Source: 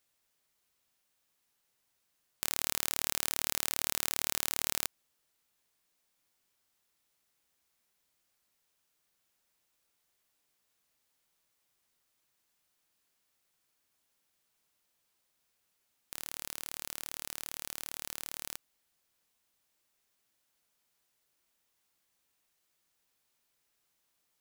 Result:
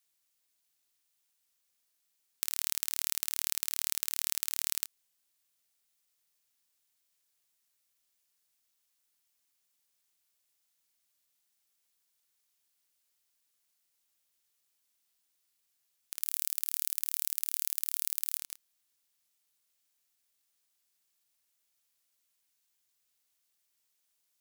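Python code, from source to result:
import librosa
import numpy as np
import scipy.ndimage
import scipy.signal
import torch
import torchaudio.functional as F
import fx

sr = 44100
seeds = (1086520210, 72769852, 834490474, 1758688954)

y = fx.high_shelf(x, sr, hz=7700.0, db=9.5, at=(16.21, 18.38))
y = y * np.sin(2.0 * np.pi * 290.0 * np.arange(len(y)) / sr)
y = fx.high_shelf(y, sr, hz=2300.0, db=11.5)
y = fx.buffer_glitch(y, sr, at_s=(0.61, 18.45), block=256, repeats=5)
y = y * librosa.db_to_amplitude(-7.0)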